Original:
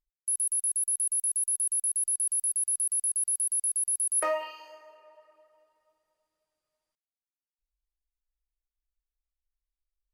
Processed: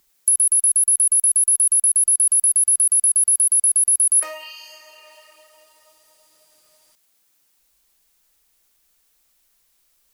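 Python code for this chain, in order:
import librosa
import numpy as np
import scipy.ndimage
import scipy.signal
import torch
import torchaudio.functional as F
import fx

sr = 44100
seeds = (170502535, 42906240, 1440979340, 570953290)

y = fx.high_shelf(x, sr, hz=5200.0, db=7.5)
y = fx.band_squash(y, sr, depth_pct=70)
y = y * librosa.db_to_amplitude(5.5)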